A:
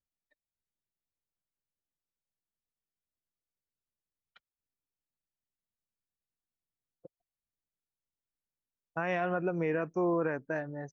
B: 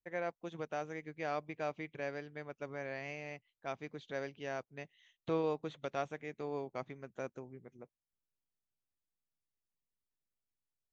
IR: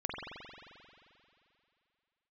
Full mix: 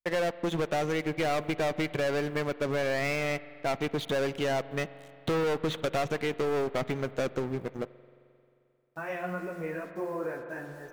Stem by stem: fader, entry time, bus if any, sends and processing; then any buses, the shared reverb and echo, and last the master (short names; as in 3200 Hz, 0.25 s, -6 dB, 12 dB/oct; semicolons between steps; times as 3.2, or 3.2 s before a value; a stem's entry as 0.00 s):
-4.0 dB, 0.00 s, send -7 dB, bit-crush 9-bit; ensemble effect
+1.5 dB, 0.00 s, send -20.5 dB, sample leveller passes 5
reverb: on, RT60 2.7 s, pre-delay 44 ms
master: compressor, threshold -26 dBFS, peak gain reduction 4 dB